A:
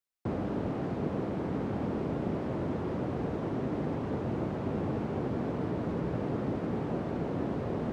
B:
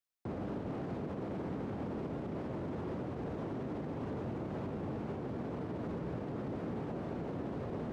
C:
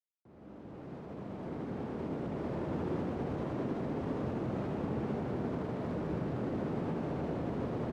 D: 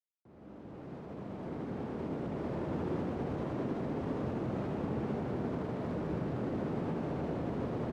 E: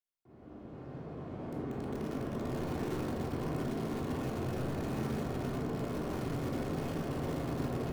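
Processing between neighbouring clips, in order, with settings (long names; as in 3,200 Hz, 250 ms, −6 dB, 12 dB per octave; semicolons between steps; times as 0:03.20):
brickwall limiter −29 dBFS, peak gain reduction 9 dB; level −2.5 dB
fade in at the beginning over 2.60 s; mains-hum notches 50/100 Hz; loudspeakers that aren't time-aligned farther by 27 metres −1 dB, 68 metres −3 dB
no processing that can be heard
in parallel at −5 dB: wrap-around overflow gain 30 dB; on the sum: rectangular room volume 960 cubic metres, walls furnished, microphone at 3.3 metres; level −8.5 dB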